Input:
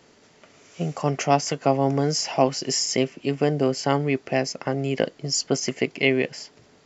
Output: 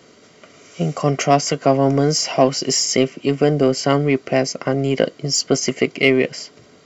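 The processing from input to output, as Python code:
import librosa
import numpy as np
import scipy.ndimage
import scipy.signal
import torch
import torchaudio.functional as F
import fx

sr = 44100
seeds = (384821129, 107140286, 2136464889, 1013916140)

p1 = fx.notch_comb(x, sr, f0_hz=870.0)
p2 = 10.0 ** (-19.0 / 20.0) * np.tanh(p1 / 10.0 ** (-19.0 / 20.0))
p3 = p1 + F.gain(torch.from_numpy(p2), -6.0).numpy()
y = F.gain(torch.from_numpy(p3), 4.0).numpy()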